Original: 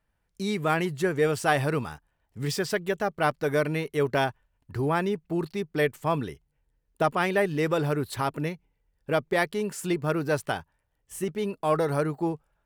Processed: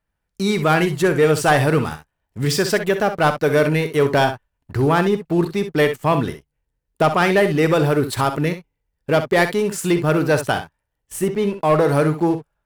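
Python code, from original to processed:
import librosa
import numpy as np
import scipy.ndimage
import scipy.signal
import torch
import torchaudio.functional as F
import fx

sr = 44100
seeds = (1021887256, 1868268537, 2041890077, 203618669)

y = fx.high_shelf(x, sr, hz=3600.0, db=-6.5, at=(11.21, 11.85))
y = fx.leveller(y, sr, passes=2)
y = fx.room_early_taps(y, sr, ms=(46, 64), db=(-15.5, -10.5))
y = y * 10.0 ** (2.0 / 20.0)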